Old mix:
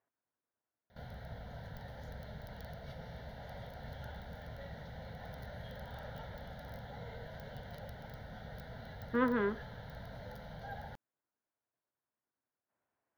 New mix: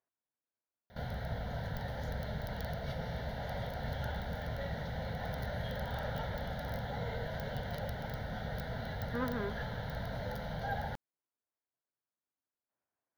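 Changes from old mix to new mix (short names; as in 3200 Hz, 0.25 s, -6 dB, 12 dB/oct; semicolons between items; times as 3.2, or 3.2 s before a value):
speech -6.0 dB; background +8.5 dB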